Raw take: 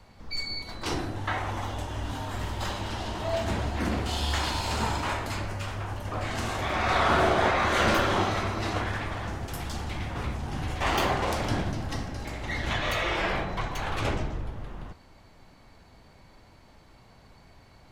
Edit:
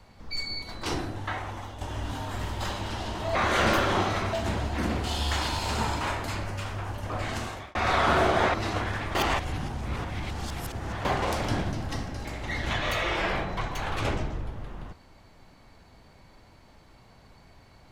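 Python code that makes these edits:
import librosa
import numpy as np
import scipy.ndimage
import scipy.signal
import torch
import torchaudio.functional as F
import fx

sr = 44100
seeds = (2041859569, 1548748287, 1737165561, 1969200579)

y = fx.edit(x, sr, fx.fade_out_to(start_s=0.94, length_s=0.87, floor_db=-8.5),
    fx.fade_out_span(start_s=6.33, length_s=0.44),
    fx.move(start_s=7.56, length_s=0.98, to_s=3.35),
    fx.reverse_span(start_s=9.15, length_s=1.9), tone=tone)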